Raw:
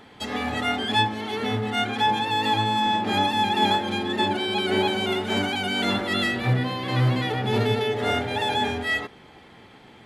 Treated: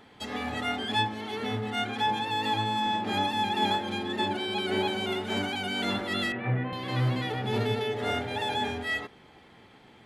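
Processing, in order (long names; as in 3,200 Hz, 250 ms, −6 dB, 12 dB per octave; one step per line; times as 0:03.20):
0:06.32–0:06.73: Chebyshev band-pass filter 120–2,400 Hz, order 3
level −5.5 dB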